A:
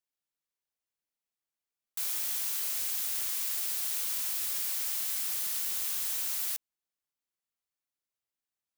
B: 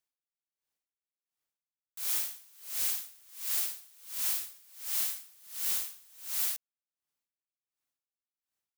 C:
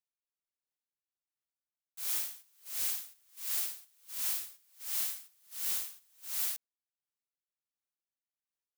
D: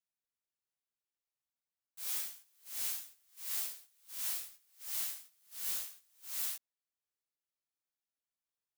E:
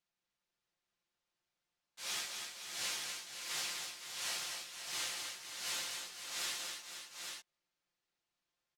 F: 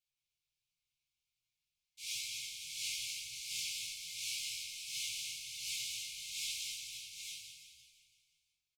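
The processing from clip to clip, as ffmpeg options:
-af "aeval=exprs='val(0)*pow(10,-30*(0.5-0.5*cos(2*PI*1.4*n/s))/20)':c=same,volume=3.5dB"
-af "agate=range=-7dB:threshold=-48dB:ratio=16:detection=peak,volume=-2.5dB"
-af "flanger=delay=15:depth=2.2:speed=0.44"
-filter_complex "[0:a]lowpass=5.2k,aecho=1:1:5.7:0.48,asplit=2[a][b];[b]aecho=0:1:245|516|837:0.562|0.355|0.501[c];[a][c]amix=inputs=2:normalize=0,volume=7dB"
-filter_complex "[0:a]asplit=8[a][b][c][d][e][f][g][h];[b]adelay=170,afreqshift=-84,volume=-6.5dB[i];[c]adelay=340,afreqshift=-168,volume=-11.5dB[j];[d]adelay=510,afreqshift=-252,volume=-16.6dB[k];[e]adelay=680,afreqshift=-336,volume=-21.6dB[l];[f]adelay=850,afreqshift=-420,volume=-26.6dB[m];[g]adelay=1020,afreqshift=-504,volume=-31.7dB[n];[h]adelay=1190,afreqshift=-588,volume=-36.7dB[o];[a][i][j][k][l][m][n][o]amix=inputs=8:normalize=0,flanger=delay=16:depth=3.2:speed=0.89,afftfilt=real='re*(1-between(b*sr/4096,170,2100))':imag='im*(1-between(b*sr/4096,170,2100))':win_size=4096:overlap=0.75,volume=2.5dB"

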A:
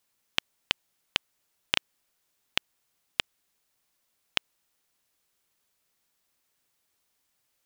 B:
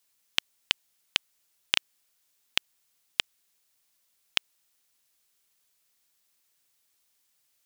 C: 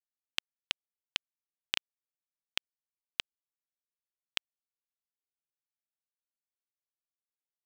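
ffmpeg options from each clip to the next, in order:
-af "highshelf=f=2k:g=9,volume=-4.5dB"
-af "acrusher=bits=7:mix=0:aa=0.5,volume=-7.5dB"

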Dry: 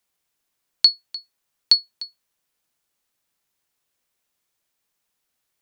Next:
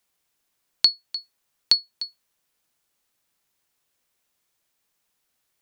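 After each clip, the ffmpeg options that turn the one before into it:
-af "acompressor=threshold=-25dB:ratio=1.5,volume=2dB"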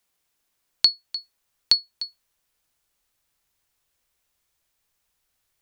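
-af "asubboost=boost=4:cutoff=100"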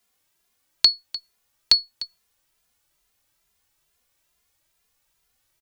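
-filter_complex "[0:a]asplit=2[a][b];[b]adelay=2.5,afreqshift=2.3[c];[a][c]amix=inputs=2:normalize=1,volume=6.5dB"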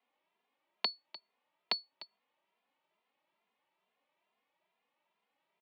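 -af "highpass=f=160:w=0.5412,highpass=f=160:w=1.3066,equalizer=f=570:t=q:w=4:g=5,equalizer=f=880:t=q:w=4:g=7,equalizer=f=1.5k:t=q:w=4:g=-7,lowpass=f=2.9k:w=0.5412,lowpass=f=2.9k:w=1.3066,afreqshift=39,volume=-3.5dB"

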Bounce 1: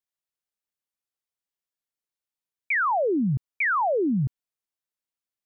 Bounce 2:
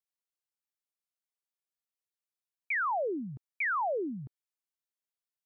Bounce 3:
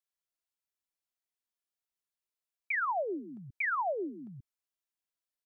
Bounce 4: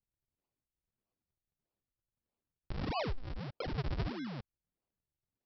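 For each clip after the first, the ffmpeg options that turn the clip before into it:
-af "bass=f=250:g=-13,treble=f=4k:g=2,volume=-7dB"
-filter_complex "[0:a]aecho=1:1:3:0.31,acrossover=split=240[a][b];[a]adelay=130[c];[c][b]amix=inputs=2:normalize=0,volume=-1.5dB"
-af "acompressor=threshold=-37dB:ratio=6,alimiter=level_in=10.5dB:limit=-24dB:level=0:latency=1:release=388,volume=-10.5dB,aresample=11025,acrusher=samples=28:mix=1:aa=0.000001:lfo=1:lforange=44.8:lforate=1.6,aresample=44100,volume=5dB"

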